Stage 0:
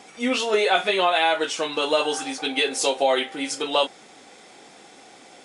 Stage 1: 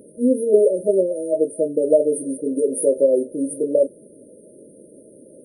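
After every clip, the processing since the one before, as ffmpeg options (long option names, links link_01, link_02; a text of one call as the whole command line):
ffmpeg -i in.wav -af "afftfilt=real='re*(1-between(b*sr/4096,640,8800))':imag='im*(1-between(b*sr/4096,640,8800))':win_size=4096:overlap=0.75,volume=7.5dB" out.wav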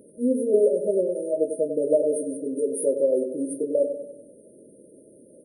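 ffmpeg -i in.wav -filter_complex "[0:a]asplit=2[link_01][link_02];[link_02]adelay=96,lowpass=frequency=1800:poles=1,volume=-8dB,asplit=2[link_03][link_04];[link_04]adelay=96,lowpass=frequency=1800:poles=1,volume=0.52,asplit=2[link_05][link_06];[link_06]adelay=96,lowpass=frequency=1800:poles=1,volume=0.52,asplit=2[link_07][link_08];[link_08]adelay=96,lowpass=frequency=1800:poles=1,volume=0.52,asplit=2[link_09][link_10];[link_10]adelay=96,lowpass=frequency=1800:poles=1,volume=0.52,asplit=2[link_11][link_12];[link_12]adelay=96,lowpass=frequency=1800:poles=1,volume=0.52[link_13];[link_01][link_03][link_05][link_07][link_09][link_11][link_13]amix=inputs=7:normalize=0,volume=-5.5dB" out.wav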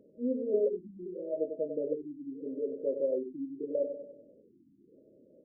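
ffmpeg -i in.wav -af "aexciter=amount=8.1:drive=9.7:freq=5400,afftfilt=real='re*lt(b*sr/1024,330*pow(1600/330,0.5+0.5*sin(2*PI*0.8*pts/sr)))':imag='im*lt(b*sr/1024,330*pow(1600/330,0.5+0.5*sin(2*PI*0.8*pts/sr)))':win_size=1024:overlap=0.75,volume=-9dB" out.wav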